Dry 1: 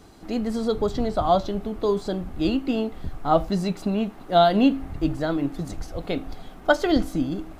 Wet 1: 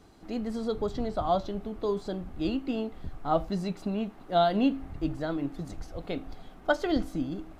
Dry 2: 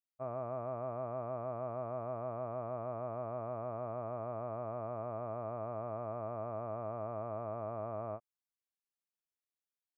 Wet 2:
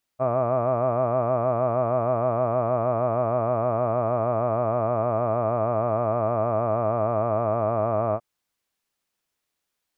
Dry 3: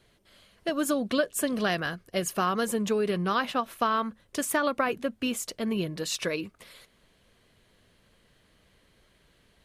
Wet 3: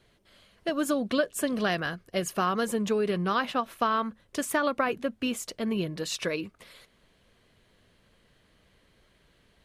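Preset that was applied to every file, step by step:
high shelf 6900 Hz -5 dB; normalise peaks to -12 dBFS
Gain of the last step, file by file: -6.5, +16.5, 0.0 dB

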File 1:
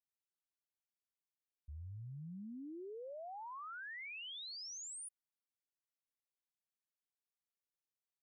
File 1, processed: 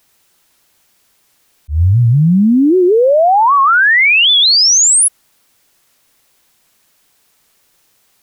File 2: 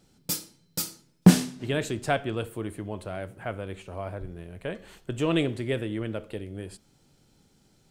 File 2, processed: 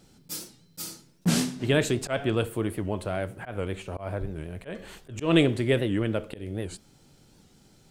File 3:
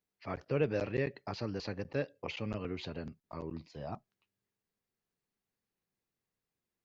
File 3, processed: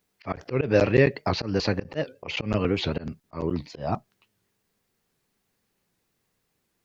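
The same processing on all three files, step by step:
auto swell 0.144 s; record warp 78 rpm, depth 160 cents; normalise peaks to -6 dBFS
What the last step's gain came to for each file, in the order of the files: +38.5, +5.0, +15.0 dB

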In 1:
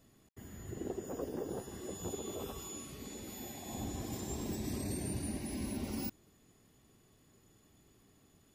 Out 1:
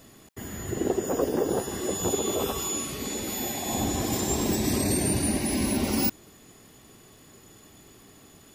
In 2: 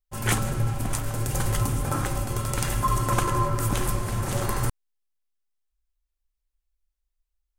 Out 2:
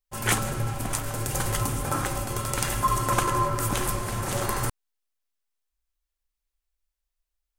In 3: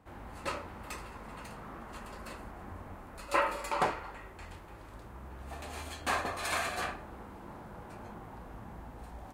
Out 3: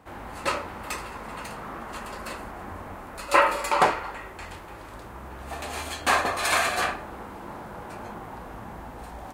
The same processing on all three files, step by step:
low shelf 250 Hz -7 dB; match loudness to -27 LUFS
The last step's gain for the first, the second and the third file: +16.5, +2.0, +10.5 dB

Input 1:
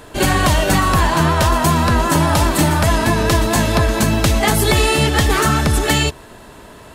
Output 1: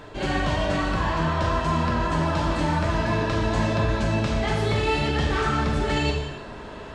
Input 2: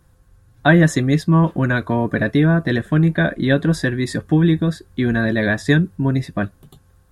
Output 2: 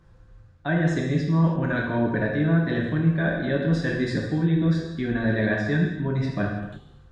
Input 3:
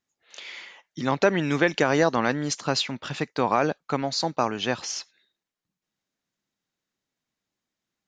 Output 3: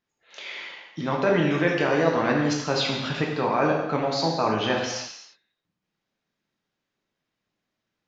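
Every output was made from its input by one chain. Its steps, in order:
reverse; compressor 6:1, threshold -22 dBFS; reverse; Gaussian blur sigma 1.6 samples; non-linear reverb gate 0.36 s falling, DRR -1.5 dB; match loudness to -24 LUFS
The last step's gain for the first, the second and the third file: -2.0, -1.5, +2.0 dB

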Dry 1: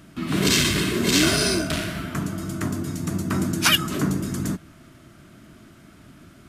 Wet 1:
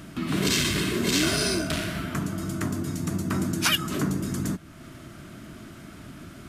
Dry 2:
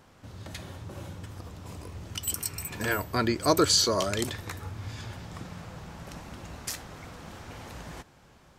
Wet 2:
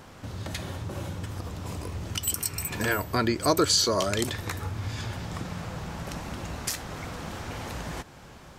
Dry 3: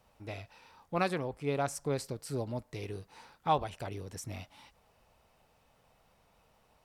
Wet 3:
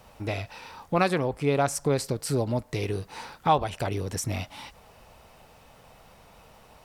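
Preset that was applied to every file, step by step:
compressor 1.5:1, threshold -45 dBFS; normalise peaks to -9 dBFS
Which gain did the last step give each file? +6.0, +9.0, +14.0 dB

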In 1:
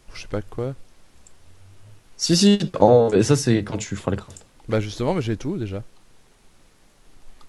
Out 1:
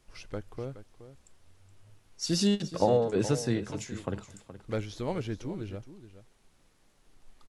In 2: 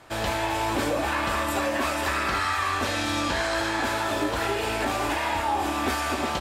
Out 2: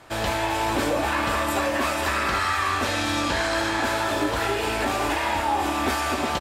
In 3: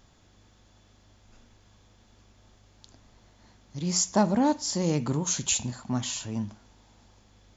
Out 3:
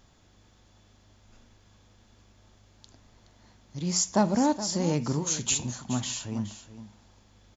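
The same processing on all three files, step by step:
echo 0.421 s -13.5 dB; normalise peaks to -12 dBFS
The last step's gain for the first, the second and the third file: -10.5, +2.0, -0.5 dB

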